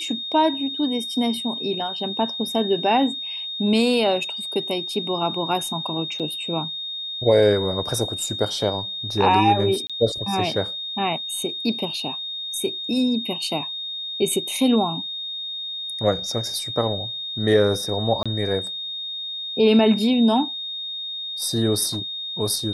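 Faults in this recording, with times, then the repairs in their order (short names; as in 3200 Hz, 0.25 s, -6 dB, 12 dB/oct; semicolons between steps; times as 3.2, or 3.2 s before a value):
tone 3700 Hz -28 dBFS
6.19–6.2 gap 6.9 ms
9.87–9.9 gap 26 ms
18.23–18.26 gap 26 ms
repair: notch 3700 Hz, Q 30; interpolate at 6.19, 6.9 ms; interpolate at 9.87, 26 ms; interpolate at 18.23, 26 ms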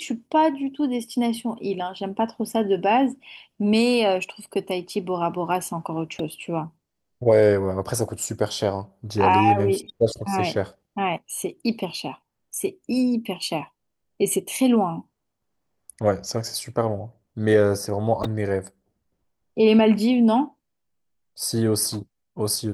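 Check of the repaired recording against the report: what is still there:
none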